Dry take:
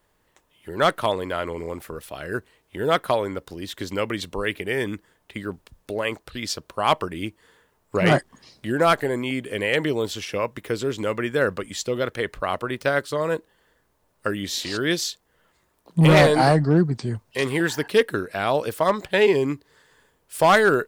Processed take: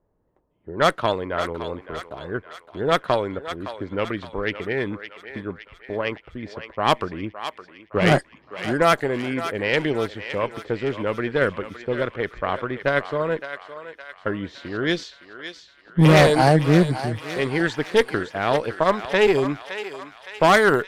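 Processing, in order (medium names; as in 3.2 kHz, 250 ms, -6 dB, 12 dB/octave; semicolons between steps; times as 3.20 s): level-controlled noise filter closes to 610 Hz, open at -14 dBFS; Chebyshev shaper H 2 -11 dB, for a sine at -7.5 dBFS; thinning echo 564 ms, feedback 59%, high-pass 840 Hz, level -9 dB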